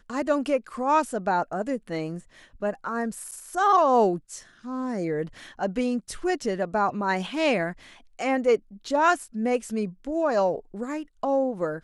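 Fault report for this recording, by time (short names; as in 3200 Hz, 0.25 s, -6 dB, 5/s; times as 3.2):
3.31–3.32 gap 7.9 ms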